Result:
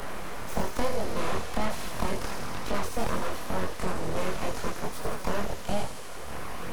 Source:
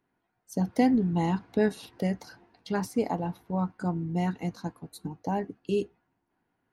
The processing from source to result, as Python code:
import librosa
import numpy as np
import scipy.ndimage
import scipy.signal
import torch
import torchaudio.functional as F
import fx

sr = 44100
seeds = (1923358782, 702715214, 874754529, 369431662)

y = fx.bin_compress(x, sr, power=0.4)
y = scipy.signal.sosfilt(scipy.signal.butter(2, 160.0, 'highpass', fs=sr, output='sos'), y)
y = fx.high_shelf(y, sr, hz=6100.0, db=5.0)
y = np.abs(y)
y = fx.chorus_voices(y, sr, voices=2, hz=1.1, base_ms=24, depth_ms=3.0, mix_pct=50)
y = fx.echo_wet_highpass(y, sr, ms=81, feedback_pct=73, hz=4400.0, wet_db=-3)
y = fx.band_squash(y, sr, depth_pct=70)